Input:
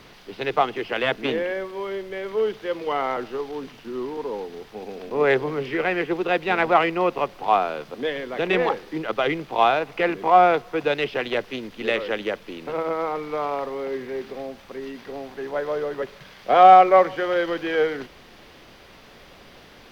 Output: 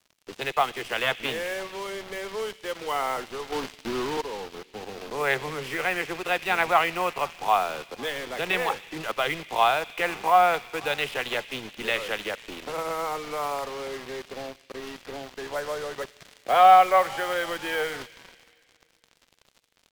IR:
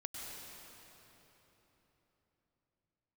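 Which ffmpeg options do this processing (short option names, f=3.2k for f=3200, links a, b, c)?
-filter_complex "[0:a]acrossover=split=140|620[a][b][c];[b]acompressor=threshold=-38dB:ratio=6[d];[c]asplit=4[e][f][g][h];[f]adelay=499,afreqshift=73,volume=-23.5dB[i];[g]adelay=998,afreqshift=146,volume=-29.7dB[j];[h]adelay=1497,afreqshift=219,volume=-35.9dB[k];[e][i][j][k]amix=inputs=4:normalize=0[l];[a][d][l]amix=inputs=3:normalize=0,acrusher=bits=5:mix=0:aa=0.5,asettb=1/sr,asplit=3[m][n][o];[m]atrim=end=3.524[p];[n]atrim=start=3.52:end=4.21,asetpts=PTS-STARTPTS,afade=t=in:d=0.004:c=qsin,afade=t=out:st=0.686:d=0.004:c=qsin,acontrast=74[q];[o]atrim=start=4.206[r];[p][q]acrossfade=d=0.004:c1=hsin:c2=qsin[s];[s][r]acrossfade=d=0.004:c1=qsin:c2=hsin,asplit=2[t][u];[u]highshelf=f=1.7k:t=q:w=1.5:g=13.5[v];[1:a]atrim=start_sample=2205,asetrate=70560,aresample=44100[w];[v][w]afir=irnorm=-1:irlink=0,volume=-19.5dB[x];[t][x]amix=inputs=2:normalize=0,volume=-1dB"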